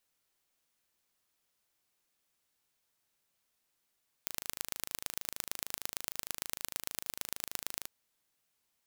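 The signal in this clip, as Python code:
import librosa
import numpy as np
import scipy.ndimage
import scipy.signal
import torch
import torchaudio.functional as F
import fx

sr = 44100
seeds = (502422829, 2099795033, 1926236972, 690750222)

y = fx.impulse_train(sr, length_s=3.59, per_s=26.5, accent_every=3, level_db=-6.5)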